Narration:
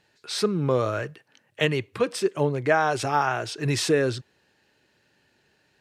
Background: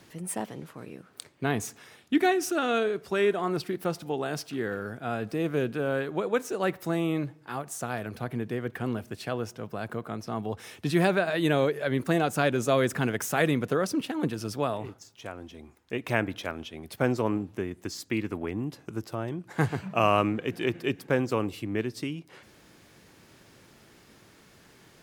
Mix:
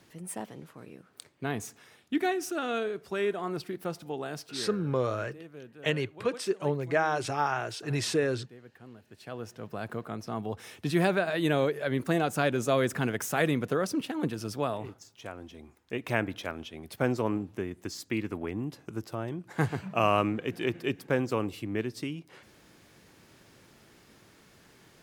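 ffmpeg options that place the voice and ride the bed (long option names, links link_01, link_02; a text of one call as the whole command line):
ffmpeg -i stem1.wav -i stem2.wav -filter_complex "[0:a]adelay=4250,volume=-5.5dB[link_01];[1:a]volume=12dB,afade=type=out:start_time=4.27:duration=0.72:silence=0.199526,afade=type=in:start_time=9.05:duration=0.72:silence=0.141254[link_02];[link_01][link_02]amix=inputs=2:normalize=0" out.wav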